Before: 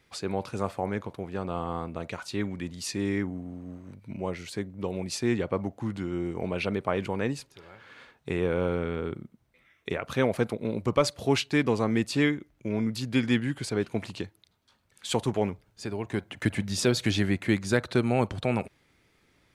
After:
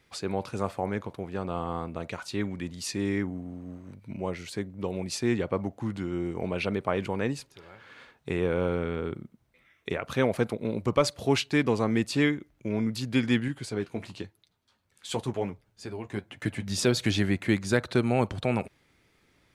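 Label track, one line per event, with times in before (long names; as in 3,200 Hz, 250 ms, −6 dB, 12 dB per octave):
13.480000	16.670000	flanger 1 Hz, delay 6.2 ms, depth 6.6 ms, regen −45%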